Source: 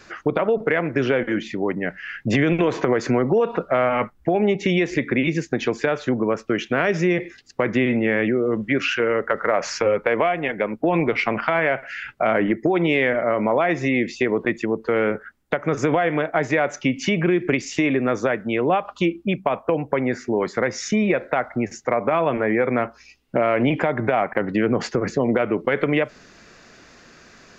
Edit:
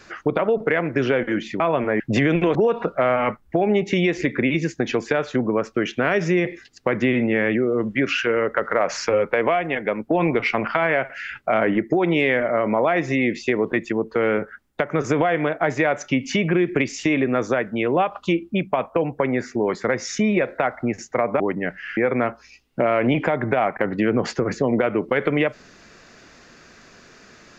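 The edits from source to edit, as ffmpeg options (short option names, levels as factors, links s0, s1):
-filter_complex "[0:a]asplit=6[s0][s1][s2][s3][s4][s5];[s0]atrim=end=1.602[s6];[s1]atrim=start=22.128:end=22.532[s7];[s2]atrim=start=2.168:end=2.722[s8];[s3]atrim=start=3.278:end=22.132[s9];[s4]atrim=start=1.598:end=2.172[s10];[s5]atrim=start=22.528[s11];[s6][s7]acrossfade=d=0.004:c1=hsin:c2=hsin[s12];[s12][s8]acrossfade=d=0.004:c1=hsin:c2=hsin[s13];[s13][s9]acrossfade=d=0.004:c1=hsin:c2=hsin[s14];[s14][s10]acrossfade=d=0.004:c1=hsin:c2=hsin[s15];[s15][s11]acrossfade=d=0.004:c1=hsin:c2=hsin"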